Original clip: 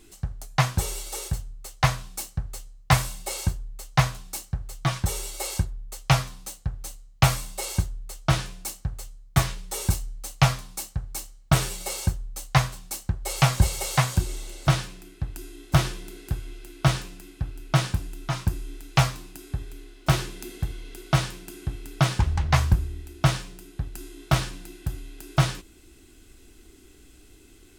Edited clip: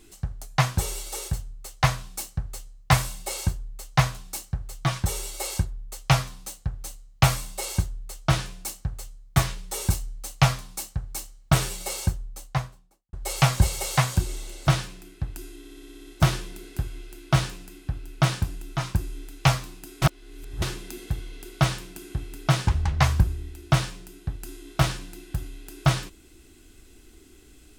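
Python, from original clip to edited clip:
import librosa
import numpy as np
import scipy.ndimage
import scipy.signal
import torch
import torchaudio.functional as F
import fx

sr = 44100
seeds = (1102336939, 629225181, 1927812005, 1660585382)

y = fx.studio_fade_out(x, sr, start_s=12.01, length_s=1.12)
y = fx.edit(y, sr, fx.stutter(start_s=15.59, slice_s=0.06, count=9),
    fx.reverse_span(start_s=19.54, length_s=0.6), tone=tone)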